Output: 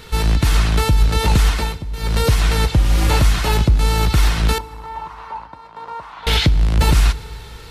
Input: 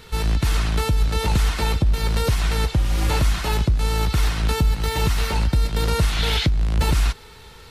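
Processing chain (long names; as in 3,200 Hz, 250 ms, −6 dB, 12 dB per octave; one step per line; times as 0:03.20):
0:01.49–0:02.21: duck −14.5 dB, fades 0.30 s
0:04.58–0:06.27: resonant band-pass 980 Hz, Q 5
feedback delay network reverb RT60 1.9 s, low-frequency decay 1.4×, high-frequency decay 0.85×, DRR 18.5 dB
level +5 dB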